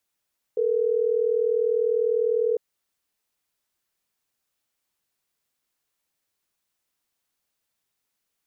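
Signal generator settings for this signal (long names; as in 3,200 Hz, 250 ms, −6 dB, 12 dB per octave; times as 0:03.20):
call progress tone ringback tone, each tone −22.5 dBFS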